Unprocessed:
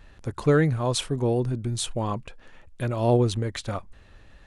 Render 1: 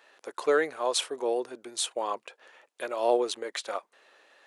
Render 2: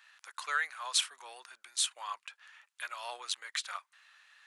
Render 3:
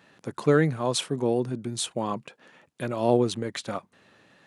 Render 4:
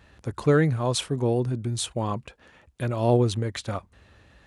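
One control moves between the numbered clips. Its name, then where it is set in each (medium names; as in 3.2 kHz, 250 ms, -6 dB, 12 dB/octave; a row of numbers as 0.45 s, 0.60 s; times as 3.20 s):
high-pass, cutoff frequency: 420 Hz, 1.2 kHz, 150 Hz, 54 Hz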